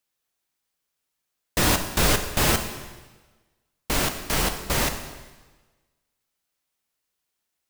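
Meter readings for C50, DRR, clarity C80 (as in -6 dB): 8.5 dB, 6.0 dB, 10.0 dB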